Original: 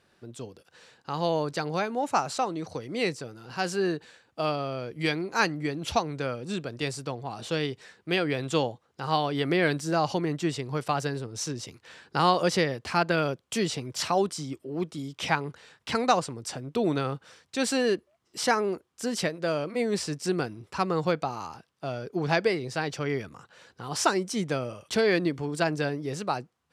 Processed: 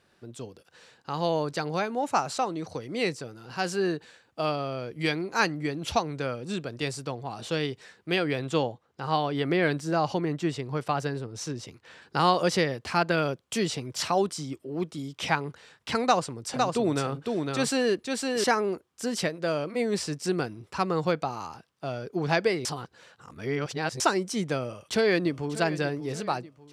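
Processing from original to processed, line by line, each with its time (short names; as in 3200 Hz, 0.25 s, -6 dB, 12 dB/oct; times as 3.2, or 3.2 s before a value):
8.39–12.02 high shelf 3900 Hz -6 dB
16.03–18.44 echo 0.508 s -3.5 dB
22.65–24 reverse
24.66–25.61 echo throw 0.59 s, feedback 50%, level -15 dB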